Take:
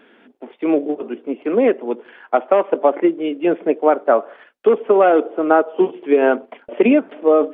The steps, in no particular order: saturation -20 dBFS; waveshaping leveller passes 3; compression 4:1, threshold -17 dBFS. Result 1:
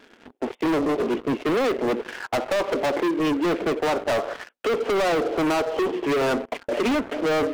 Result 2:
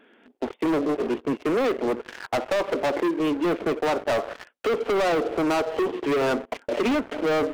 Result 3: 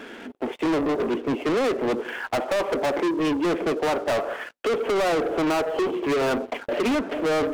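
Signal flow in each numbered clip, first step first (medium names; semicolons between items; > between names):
compression > waveshaping leveller > saturation; waveshaping leveller > compression > saturation; compression > saturation > waveshaping leveller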